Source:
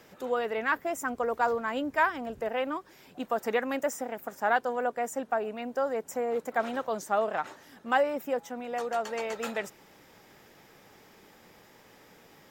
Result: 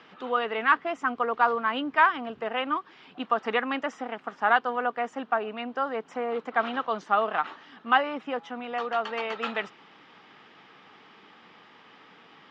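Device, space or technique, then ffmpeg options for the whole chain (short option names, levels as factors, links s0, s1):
kitchen radio: -af "highpass=200,equalizer=f=370:t=q:w=4:g=-4,equalizer=f=560:t=q:w=4:g=-9,equalizer=f=1200:t=q:w=4:g=7,equalizer=f=3000:t=q:w=4:g=6,lowpass=f=4100:w=0.5412,lowpass=f=4100:w=1.3066,volume=1.5"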